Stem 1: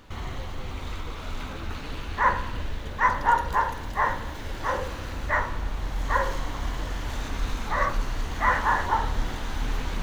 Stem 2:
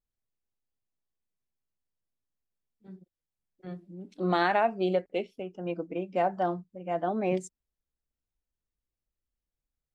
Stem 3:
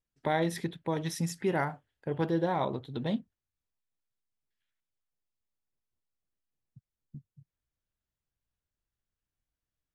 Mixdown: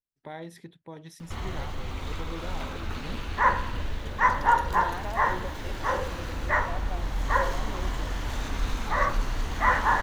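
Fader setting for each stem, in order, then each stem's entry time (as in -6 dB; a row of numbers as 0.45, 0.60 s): 0.0, -13.0, -11.5 dB; 1.20, 0.50, 0.00 s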